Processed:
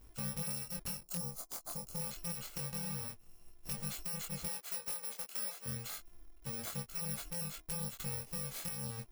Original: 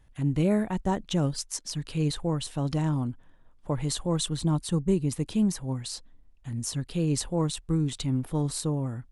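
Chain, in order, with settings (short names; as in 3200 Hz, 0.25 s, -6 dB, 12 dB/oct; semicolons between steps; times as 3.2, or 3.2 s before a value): FFT order left unsorted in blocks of 128 samples; 1.01–2.01 band shelf 2300 Hz -13 dB; 4.46–5.66 Bessel high-pass 420 Hz, order 4; compressor 4:1, threshold -41 dBFS, peak gain reduction 17.5 dB; wrapped overs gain 30.5 dB; chorus 0.27 Hz, delay 19.5 ms, depth 4.4 ms; gain +4 dB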